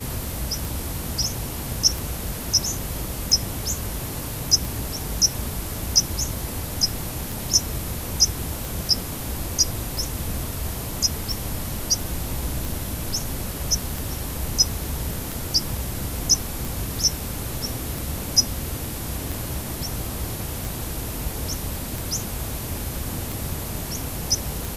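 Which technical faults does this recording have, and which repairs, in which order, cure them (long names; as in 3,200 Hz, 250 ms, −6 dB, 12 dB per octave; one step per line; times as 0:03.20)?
scratch tick 45 rpm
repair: click removal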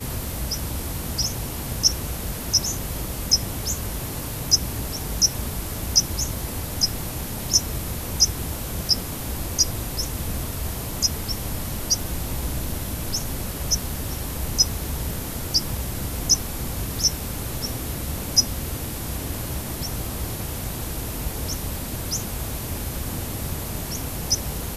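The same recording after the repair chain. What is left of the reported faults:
none of them is left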